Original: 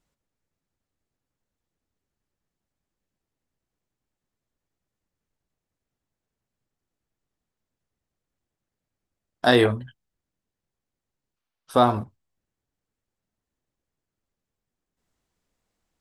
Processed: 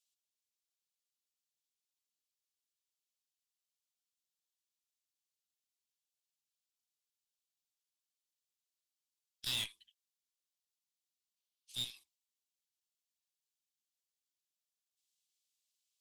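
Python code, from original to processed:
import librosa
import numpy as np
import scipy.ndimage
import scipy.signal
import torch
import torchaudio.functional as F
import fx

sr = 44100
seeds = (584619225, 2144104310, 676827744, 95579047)

y = fx.spec_gate(x, sr, threshold_db=-15, keep='weak')
y = scipy.signal.sosfilt(scipy.signal.cheby2(4, 40, 1500.0, 'highpass', fs=sr, output='sos'), y)
y = fx.tube_stage(y, sr, drive_db=34.0, bias=0.55)
y = y * 10.0 ** (2.0 / 20.0)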